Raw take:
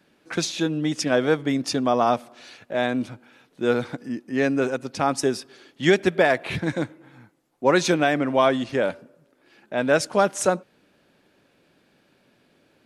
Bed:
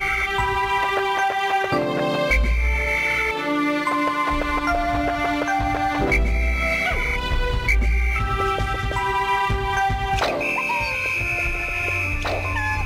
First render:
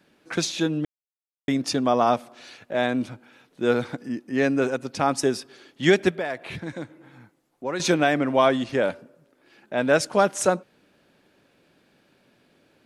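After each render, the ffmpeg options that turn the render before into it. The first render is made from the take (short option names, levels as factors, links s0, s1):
-filter_complex "[0:a]asettb=1/sr,asplit=3[s0][s1][s2];[s0]atrim=end=6.114[s3];[s1]atrim=start=6.11:end=7.8,asetpts=PTS-STARTPTS,afade=t=in:d=0.004:c=qsin,afade=t=out:st=1.686:d=0.004:c=qsin,acompressor=threshold=0.00708:ratio=1.5:attack=3.2:release=140:knee=1:detection=peak[s4];[s2]atrim=start=7.796[s5];[s3][s4]acrossfade=d=0.004:c1=hsin:c2=qsin[s6];[s6][s5]acrossfade=d=0.004:c1=qsin:c2=hsin,asplit=3[s7][s8][s9];[s7]atrim=end=0.85,asetpts=PTS-STARTPTS,afade=t=out:st=0.846:d=0.004:c=hsin[s10];[s8]atrim=start=0.85:end=1.48,asetpts=PTS-STARTPTS,volume=0[s11];[s9]atrim=start=1.48,asetpts=PTS-STARTPTS,afade=t=in:d=0.004:c=hsin[s12];[s10][s11][s12]concat=n=3:v=0:a=1"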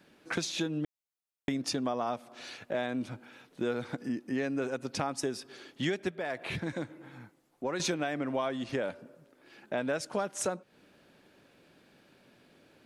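-af "acompressor=threshold=0.0316:ratio=5"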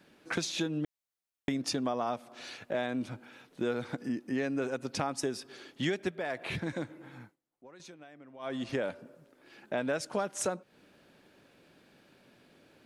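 -filter_complex "[0:a]asplit=3[s0][s1][s2];[s0]atrim=end=7.37,asetpts=PTS-STARTPTS,afade=t=out:st=7.22:d=0.15:silence=0.105925[s3];[s1]atrim=start=7.37:end=8.39,asetpts=PTS-STARTPTS,volume=0.106[s4];[s2]atrim=start=8.39,asetpts=PTS-STARTPTS,afade=t=in:d=0.15:silence=0.105925[s5];[s3][s4][s5]concat=n=3:v=0:a=1"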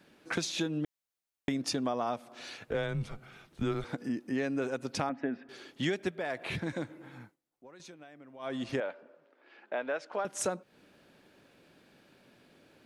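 -filter_complex "[0:a]asettb=1/sr,asplit=3[s0][s1][s2];[s0]atrim=end=2.674[s3];[s1]atrim=start=2.67:end=3.84,asetpts=PTS-STARTPTS,afade=t=in:d=0.004:c=qsin,afade=t=out:st=1.166:d=0.004:c=qsin,afreqshift=-110[s4];[s2]atrim=start=3.836[s5];[s3][s4]acrossfade=d=0.004:c1=hsin:c2=qsin[s6];[s6][s5]acrossfade=d=0.004:c1=qsin:c2=hsin,asettb=1/sr,asplit=3[s7][s8][s9];[s7]atrim=end=5.094[s10];[s8]atrim=start=5.09:end=5.49,asetpts=PTS-STARTPTS,afade=t=in:d=0.004:c=qsin,afade=t=out:st=0.396:d=0.004:c=qsin,highpass=180,equalizer=f=250:t=q:w=4:g=8,equalizer=f=380:t=q:w=4:g=-7,equalizer=f=670:t=q:w=4:g=4,equalizer=f=1100:t=q:w=4:g=-6,equalizer=f=1800:t=q:w=4:g=5,lowpass=f=2300:w=0.5412,lowpass=f=2300:w=1.3066[s11];[s9]atrim=start=5.486[s12];[s10][s11]acrossfade=d=0.004:c1=hsin:c2=qsin[s13];[s13][s12]acrossfade=d=0.004:c1=qsin:c2=hsin,asettb=1/sr,asplit=3[s14][s15][s16];[s14]atrim=end=8.804[s17];[s15]atrim=start=8.8:end=10.25,asetpts=PTS-STARTPTS,afade=t=in:d=0.004:c=qsin,afade=t=out:st=1.446:d=0.004:c=qsin,highpass=450,lowpass=2800[s18];[s16]atrim=start=10.246[s19];[s17][s18]acrossfade=d=0.004:c1=hsin:c2=qsin[s20];[s20][s19]acrossfade=d=0.004:c1=qsin:c2=hsin"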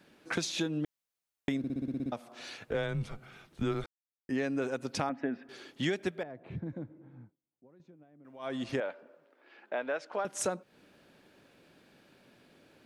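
-filter_complex "[0:a]asettb=1/sr,asplit=3[s0][s1][s2];[s0]atrim=end=6.234[s3];[s1]atrim=start=6.23:end=8.25,asetpts=PTS-STARTPTS,afade=t=in:d=0.004:c=qsin,afade=t=out:st=2.016:d=0.004:c=qsin,bandpass=f=110:t=q:w=0.53[s4];[s2]atrim=start=8.246[s5];[s3][s4]acrossfade=d=0.004:c1=hsin:c2=qsin[s6];[s6][s5]acrossfade=d=0.004:c1=qsin:c2=hsin,asplit=12[s7][s8][s9][s10][s11][s12][s13][s14][s15][s16][s17][s18];[s7]atrim=end=1.642[s19];[s8]atrim=start=1.578:end=1.642[s20];[s9]atrim=start=1.578:end=1.642[s21];[s10]atrim=start=1.578:end=1.642[s22];[s11]atrim=start=1.578:end=1.642[s23];[s12]atrim=start=1.578:end=1.642[s24];[s13]atrim=start=1.578:end=1.642[s25];[s14]atrim=start=1.578:end=1.642[s26];[s15]atrim=start=1.578:end=1.642[s27];[s16]atrim=start=2.118:end=3.86,asetpts=PTS-STARTPTS,afade=t=out:st=1.738:d=0.004:c=hsin[s28];[s17]atrim=start=3.86:end=4.29,asetpts=PTS-STARTPTS,volume=0[s29];[s18]atrim=start=4.29,asetpts=PTS-STARTPTS,afade=t=in:d=0.004:c=hsin[s30];[s19][s20]acrossfade=d=0.004:c1=hsin:c2=hsin[s31];[s31][s21]acrossfade=d=0.004:c1=hsin:c2=hsin[s32];[s32][s22]acrossfade=d=0.004:c1=hsin:c2=hsin[s33];[s33][s23]acrossfade=d=0.004:c1=hsin:c2=hsin[s34];[s34][s24]acrossfade=d=0.004:c1=hsin:c2=hsin[s35];[s35][s25]acrossfade=d=0.004:c1=hsin:c2=hsin[s36];[s36][s26]acrossfade=d=0.004:c1=hsin:c2=hsin[s37];[s37][s27]acrossfade=d=0.004:c1=hsin:c2=hsin[s38];[s28][s29][s30]concat=n=3:v=0:a=1[s39];[s38][s39]acrossfade=d=0.004:c1=hsin:c2=hsin"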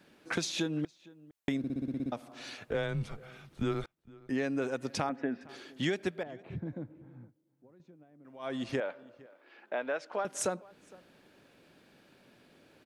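-filter_complex "[0:a]asplit=2[s0][s1];[s1]adelay=460.6,volume=0.0794,highshelf=f=4000:g=-10.4[s2];[s0][s2]amix=inputs=2:normalize=0"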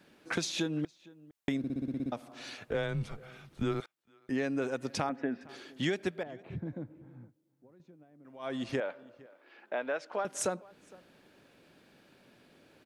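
-filter_complex "[0:a]asettb=1/sr,asplit=3[s0][s1][s2];[s0]atrim=end=3.804[s3];[s1]atrim=start=3.8:end=4.29,asetpts=PTS-STARTPTS,afade=t=in:d=0.004:c=qsin,afade=t=out:st=0.486:d=0.004:c=qsin,highpass=f=1100:p=1[s4];[s2]atrim=start=4.286[s5];[s3][s4]acrossfade=d=0.004:c1=hsin:c2=qsin[s6];[s6][s5]acrossfade=d=0.004:c1=qsin:c2=hsin"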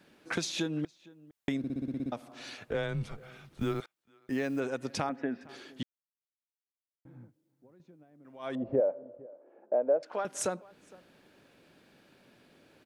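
-filter_complex "[0:a]asettb=1/sr,asplit=3[s0][s1][s2];[s0]atrim=end=3.184[s3];[s1]atrim=start=3.18:end=4.6,asetpts=PTS-STARTPTS,afade=t=in:d=0.004:c=qsin,afade=t=out:st=1.416:d=0.004:c=qsin,acrusher=bits=8:mode=log:mix=0:aa=0.000001[s4];[s2]atrim=start=4.596[s5];[s3][s4]acrossfade=d=0.004:c1=hsin:c2=qsin[s6];[s6][s5]acrossfade=d=0.004:c1=qsin:c2=hsin,asettb=1/sr,asplit=3[s7][s8][s9];[s7]atrim=end=8.554[s10];[s8]atrim=start=8.55:end=10.03,asetpts=PTS-STARTPTS,afade=t=in:d=0.004:c=qsin,afade=t=out:st=1.476:d=0.004:c=qsin,lowpass=f=570:t=q:w=3[s11];[s9]atrim=start=10.026[s12];[s10][s11]acrossfade=d=0.004:c1=hsin:c2=qsin[s13];[s13][s12]acrossfade=d=0.004:c1=qsin:c2=hsin,asplit=3[s14][s15][s16];[s14]atrim=end=5.83,asetpts=PTS-STARTPTS,afade=t=out:st=5.826:d=0.004:c=hsin[s17];[s15]atrim=start=5.83:end=7.05,asetpts=PTS-STARTPTS,volume=0[s18];[s16]atrim=start=7.05,asetpts=PTS-STARTPTS,afade=t=in:d=0.004:c=hsin[s19];[s17][s18][s19]concat=n=3:v=0:a=1"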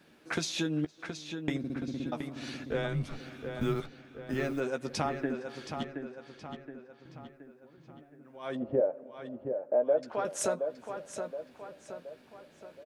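-filter_complex "[0:a]asplit=2[s0][s1];[s1]adelay=13,volume=0.376[s2];[s0][s2]amix=inputs=2:normalize=0,asplit=2[s3][s4];[s4]adelay=722,lowpass=f=4500:p=1,volume=0.447,asplit=2[s5][s6];[s6]adelay=722,lowpass=f=4500:p=1,volume=0.49,asplit=2[s7][s8];[s8]adelay=722,lowpass=f=4500:p=1,volume=0.49,asplit=2[s9][s10];[s10]adelay=722,lowpass=f=4500:p=1,volume=0.49,asplit=2[s11][s12];[s12]adelay=722,lowpass=f=4500:p=1,volume=0.49,asplit=2[s13][s14];[s14]adelay=722,lowpass=f=4500:p=1,volume=0.49[s15];[s5][s7][s9][s11][s13][s15]amix=inputs=6:normalize=0[s16];[s3][s16]amix=inputs=2:normalize=0"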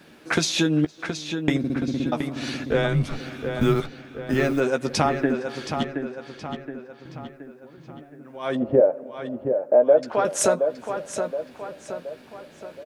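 -af "volume=3.35"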